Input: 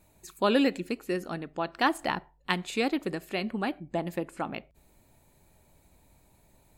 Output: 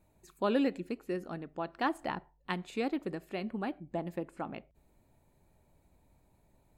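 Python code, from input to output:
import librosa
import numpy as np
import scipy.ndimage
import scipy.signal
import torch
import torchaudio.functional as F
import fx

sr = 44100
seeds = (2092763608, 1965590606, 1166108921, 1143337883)

y = fx.high_shelf(x, sr, hz=2000.0, db=-9.0)
y = F.gain(torch.from_numpy(y), -4.5).numpy()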